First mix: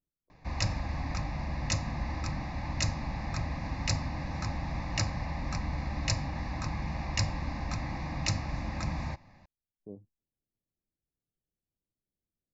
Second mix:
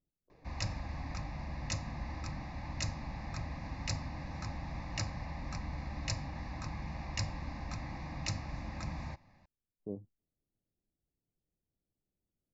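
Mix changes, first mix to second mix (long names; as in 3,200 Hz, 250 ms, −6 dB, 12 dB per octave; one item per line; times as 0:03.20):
speech +4.5 dB
background −6.5 dB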